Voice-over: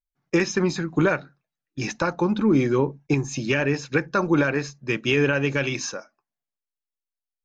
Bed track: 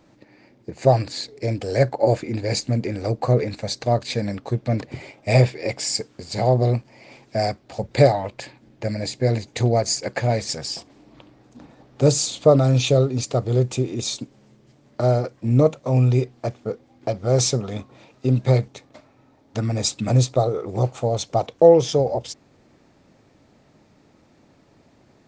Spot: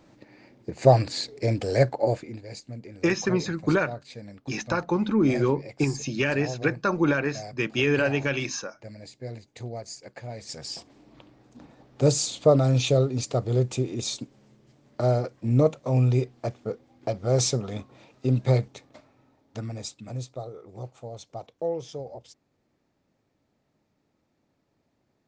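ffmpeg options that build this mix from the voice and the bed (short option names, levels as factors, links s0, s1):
-filter_complex "[0:a]adelay=2700,volume=0.75[s0];[1:a]volume=4.22,afade=t=out:st=1.64:d=0.8:silence=0.149624,afade=t=in:st=10.35:d=0.52:silence=0.223872,afade=t=out:st=18.94:d=1.05:silence=0.223872[s1];[s0][s1]amix=inputs=2:normalize=0"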